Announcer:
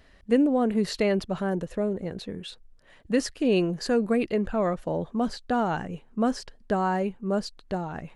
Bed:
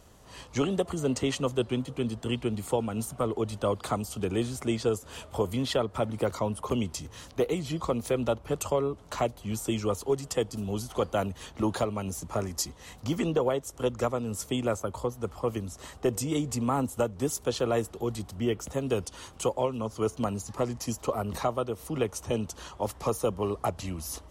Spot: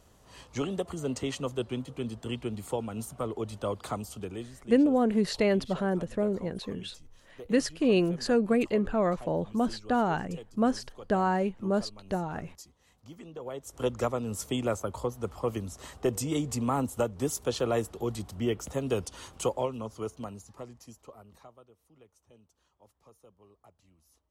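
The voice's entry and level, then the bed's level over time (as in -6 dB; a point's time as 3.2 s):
4.40 s, -1.0 dB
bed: 4.09 s -4.5 dB
4.78 s -18.5 dB
13.31 s -18.5 dB
13.79 s -1 dB
19.5 s -1 dB
21.96 s -30 dB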